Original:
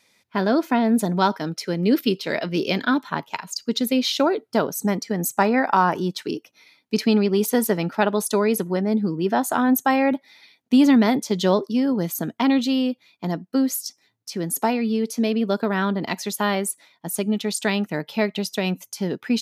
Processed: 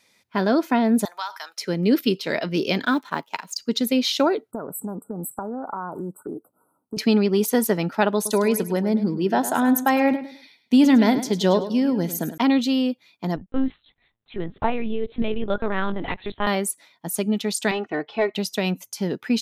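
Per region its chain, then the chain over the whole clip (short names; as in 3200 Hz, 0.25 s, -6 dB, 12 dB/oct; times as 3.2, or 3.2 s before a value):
1.05–1.58 HPF 880 Hz 24 dB/oct + high shelf 6700 Hz +7 dB + compressor, threshold -25 dBFS
2.84–3.58 G.711 law mismatch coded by A + HPF 190 Hz
4.51–6.97 compressor 5:1, threshold -27 dBFS + brick-wall FIR band-stop 1500–7600 Hz + Doppler distortion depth 0.14 ms
8.15–12.38 notch 1200 Hz, Q 7.1 + feedback echo 0.104 s, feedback 28%, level -12.5 dB
13.36–16.47 low shelf 93 Hz -9 dB + LPC vocoder at 8 kHz pitch kept
17.71–18.34 comb 2.7 ms, depth 71% + overdrive pedal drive 10 dB, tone 1300 Hz, clips at -8.5 dBFS + air absorption 150 m
whole clip: dry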